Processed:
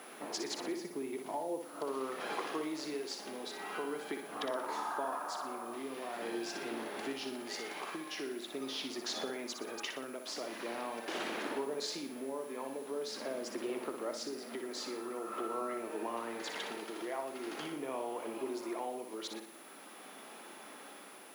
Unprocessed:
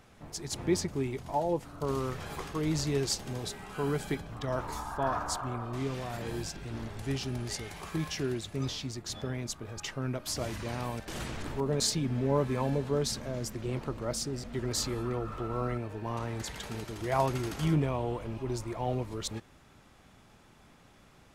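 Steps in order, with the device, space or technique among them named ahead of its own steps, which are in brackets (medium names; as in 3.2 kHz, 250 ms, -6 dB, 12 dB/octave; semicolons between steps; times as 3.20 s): medium wave at night (band-pass 150–4300 Hz; compression 6:1, threshold -44 dBFS, peak gain reduction 20 dB; tremolo 0.44 Hz, depth 38%; whistle 10 kHz -66 dBFS; white noise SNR 23 dB); high-pass 270 Hz 24 dB/octave; flutter echo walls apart 10.3 m, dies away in 0.51 s; 0.76–1.65 s: bass shelf 190 Hz +10.5 dB; trim +9.5 dB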